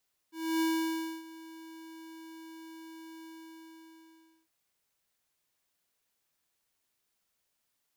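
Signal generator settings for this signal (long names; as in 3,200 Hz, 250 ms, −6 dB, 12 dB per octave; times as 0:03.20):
note with an ADSR envelope square 324 Hz, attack 286 ms, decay 621 ms, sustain −20 dB, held 2.92 s, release 1,240 ms −28 dBFS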